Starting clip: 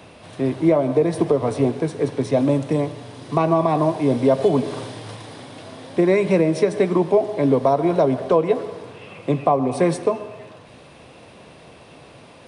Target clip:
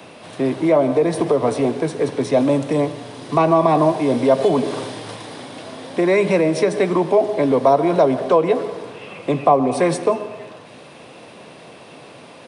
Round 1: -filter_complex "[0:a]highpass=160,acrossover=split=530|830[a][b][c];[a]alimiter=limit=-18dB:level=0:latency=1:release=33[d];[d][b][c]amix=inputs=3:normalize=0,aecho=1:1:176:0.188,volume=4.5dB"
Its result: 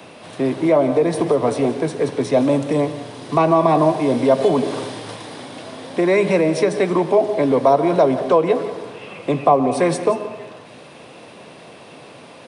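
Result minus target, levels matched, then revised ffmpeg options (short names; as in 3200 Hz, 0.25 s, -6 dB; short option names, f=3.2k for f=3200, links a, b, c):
echo-to-direct +8 dB
-filter_complex "[0:a]highpass=160,acrossover=split=530|830[a][b][c];[a]alimiter=limit=-18dB:level=0:latency=1:release=33[d];[d][b][c]amix=inputs=3:normalize=0,aecho=1:1:176:0.0708,volume=4.5dB"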